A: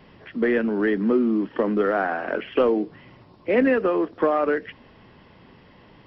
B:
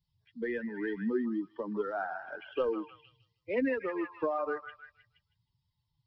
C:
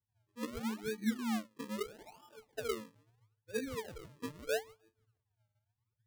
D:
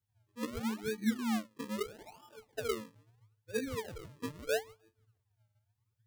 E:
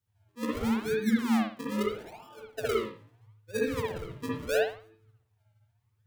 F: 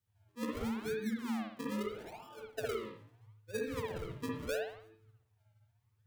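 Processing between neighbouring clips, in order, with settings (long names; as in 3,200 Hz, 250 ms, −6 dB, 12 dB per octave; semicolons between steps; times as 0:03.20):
spectral dynamics exaggerated over time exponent 2; echo through a band-pass that steps 157 ms, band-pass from 1,200 Hz, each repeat 0.7 octaves, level −5 dB; level −8 dB
resonances in every octave A, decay 0.18 s; sample-and-hold swept by an LFO 41×, swing 100% 0.77 Hz; level +4 dB
parametric band 98 Hz +5 dB 0.59 octaves; level +2 dB
convolution reverb, pre-delay 57 ms, DRR −4 dB; level +1.5 dB
downward compressor 6 to 1, threshold −32 dBFS, peak gain reduction 12 dB; level −2 dB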